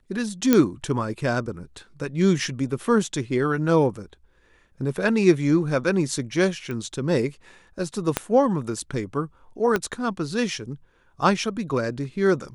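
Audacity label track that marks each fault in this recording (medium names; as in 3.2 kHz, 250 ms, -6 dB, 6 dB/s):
0.530000	0.530000	pop -4 dBFS
6.710000	6.710000	pop -20 dBFS
8.170000	8.170000	pop -5 dBFS
9.760000	9.760000	pop -9 dBFS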